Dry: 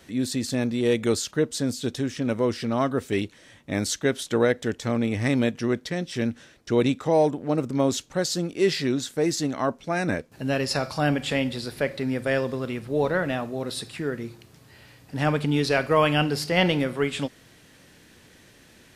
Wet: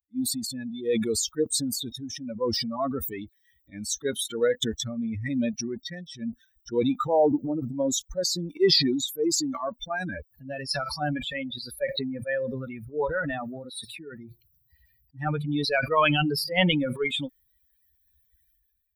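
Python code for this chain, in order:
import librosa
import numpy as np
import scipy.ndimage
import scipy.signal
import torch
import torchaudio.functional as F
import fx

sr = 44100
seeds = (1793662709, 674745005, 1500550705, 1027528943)

y = fx.bin_expand(x, sr, power=3.0)
y = fx.peak_eq(y, sr, hz=78.0, db=-8.5, octaves=2.1)
y = fx.sustainer(y, sr, db_per_s=29.0)
y = F.gain(torch.from_numpy(y), 3.0).numpy()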